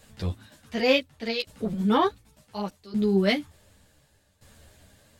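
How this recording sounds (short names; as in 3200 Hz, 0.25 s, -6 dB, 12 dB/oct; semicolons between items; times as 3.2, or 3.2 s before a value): tremolo saw down 0.68 Hz, depth 85%; a shimmering, thickened sound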